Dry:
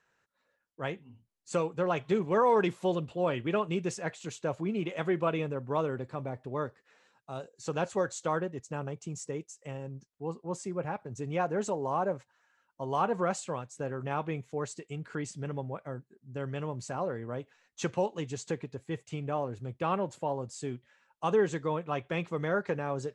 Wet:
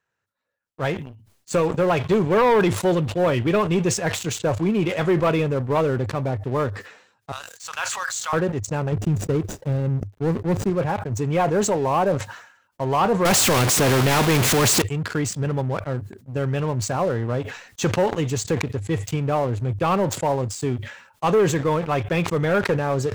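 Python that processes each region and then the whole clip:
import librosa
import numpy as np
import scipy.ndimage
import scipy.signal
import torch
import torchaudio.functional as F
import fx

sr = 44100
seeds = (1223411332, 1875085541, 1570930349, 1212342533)

y = fx.chain(x, sr, fx.highpass(hz=1100.0, slope=24),
    fx.sustainer(db_per_s=25.0), at=(7.32, 8.33))
y = fx.chain(y, sr, fx.median_filter(points=41),
    fx.low_shelf(hz=460.0, db=6.5), at=(8.92, 10.7))
y = fx.chain(y, sr, fx.zero_step(step_db=-40.5),
    fx.peak_eq(hz=260.0, db=10.5, octaves=2.6),
    fx.spectral_comp(ratio=2.0), at=(13.25, 14.82))
y = fx.leveller(y, sr, passes=3)
y = fx.peak_eq(y, sr, hz=100.0, db=11.0, octaves=0.48)
y = fx.sustainer(y, sr, db_per_s=87.0)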